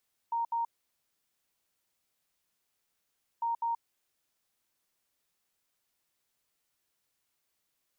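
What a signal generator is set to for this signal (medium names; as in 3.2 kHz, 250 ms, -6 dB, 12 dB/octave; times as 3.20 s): beep pattern sine 929 Hz, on 0.13 s, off 0.07 s, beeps 2, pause 2.77 s, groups 2, -28 dBFS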